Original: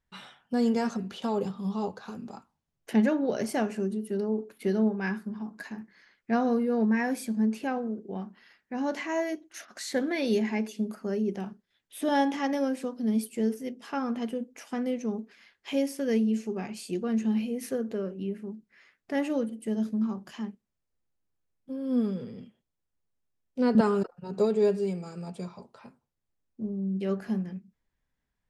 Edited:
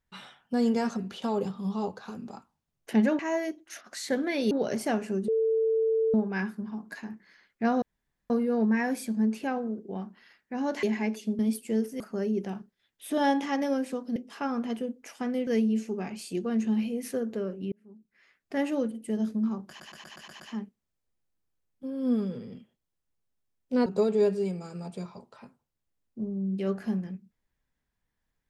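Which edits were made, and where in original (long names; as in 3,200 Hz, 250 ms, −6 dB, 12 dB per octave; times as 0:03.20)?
0:03.96–0:04.82: beep over 446 Hz −22 dBFS
0:06.50: splice in room tone 0.48 s
0:09.03–0:10.35: move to 0:03.19
0:13.07–0:13.68: move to 0:10.91
0:14.99–0:16.05: remove
0:18.30–0:19.17: fade in
0:20.26: stutter 0.12 s, 7 plays
0:23.72–0:24.28: remove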